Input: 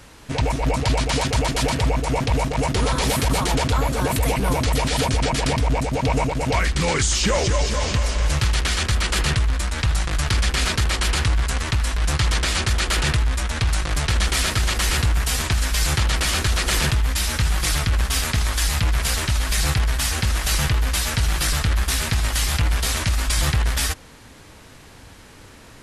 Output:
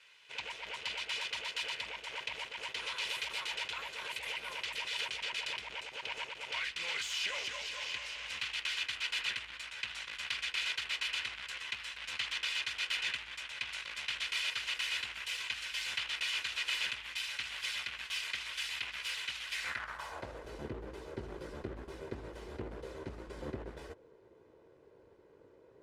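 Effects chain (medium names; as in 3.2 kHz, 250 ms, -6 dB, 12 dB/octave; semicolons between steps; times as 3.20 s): comb filter that takes the minimum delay 2 ms; band-pass sweep 2.7 kHz -> 390 Hz, 19.52–20.48 s; trim -4.5 dB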